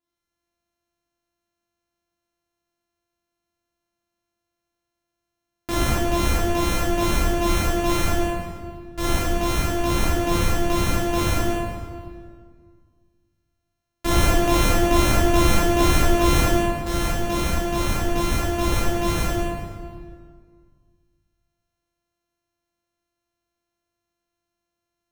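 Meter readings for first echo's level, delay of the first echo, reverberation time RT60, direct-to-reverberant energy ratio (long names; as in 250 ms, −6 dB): no echo audible, no echo audible, 1.9 s, −9.0 dB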